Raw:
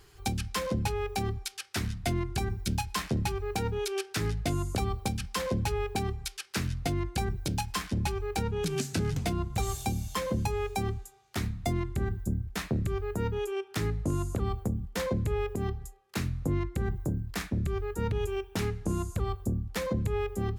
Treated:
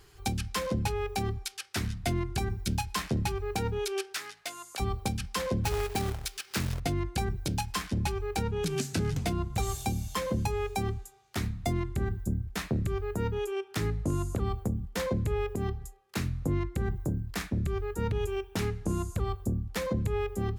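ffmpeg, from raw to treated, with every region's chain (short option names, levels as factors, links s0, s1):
-filter_complex "[0:a]asettb=1/sr,asplit=3[s0][s1][s2];[s0]atrim=end=4.144[s3];[s1]atrim=start=4.14:end=4.8,asetpts=PTS-STARTPTS,afade=t=in:d=0.004:c=qsin,afade=t=out:st=0.656:d=0.004:c=qsin,highpass=1000,volume=18.8,asoftclip=hard,volume=0.0531[s4];[s2]atrim=start=4.796[s5];[s3][s4]acrossfade=d=0.004:c1=hsin:c2=qsin[s6];[s6][s5]acrossfade=d=0.004:c1=qsin:c2=hsin,asettb=1/sr,asplit=3[s7][s8][s9];[s7]atrim=end=5.644[s10];[s8]atrim=start=5.64:end=6.8,asetpts=PTS-STARTPTS,afade=t=in:d=0.004:c=qsin,afade=t=out:st=1.156:d=0.004:c=qsin,acompressor=mode=upward:threshold=0.02:ratio=2.5:attack=3.2:release=140:knee=2.83:detection=peak,acrusher=bits=2:mode=log:mix=0:aa=0.000001[s11];[s9]atrim=start=6.796[s12];[s10][s11]acrossfade=d=0.004:c1=hsin:c2=qsin[s13];[s13][s12]acrossfade=d=0.004:c1=qsin:c2=hsin"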